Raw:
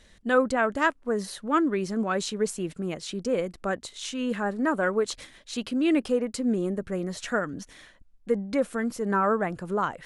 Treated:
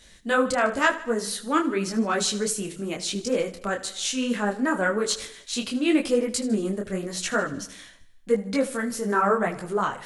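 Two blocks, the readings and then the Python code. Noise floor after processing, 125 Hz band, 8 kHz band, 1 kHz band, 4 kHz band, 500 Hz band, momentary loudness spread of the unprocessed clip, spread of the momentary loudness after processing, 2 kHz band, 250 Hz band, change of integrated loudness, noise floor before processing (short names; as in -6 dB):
-50 dBFS, +0.5 dB, +9.5 dB, +2.0 dB, +7.0 dB, +1.5 dB, 9 LU, 8 LU, +3.0 dB, +1.0 dB, +2.0 dB, -56 dBFS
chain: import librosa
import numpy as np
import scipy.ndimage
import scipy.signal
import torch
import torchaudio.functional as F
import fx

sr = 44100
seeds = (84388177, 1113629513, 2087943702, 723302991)

y = fx.high_shelf(x, sr, hz=2900.0, db=9.5)
y = fx.echo_feedback(y, sr, ms=77, feedback_pct=56, wet_db=-16)
y = fx.detune_double(y, sr, cents=33)
y = y * librosa.db_to_amplitude(4.5)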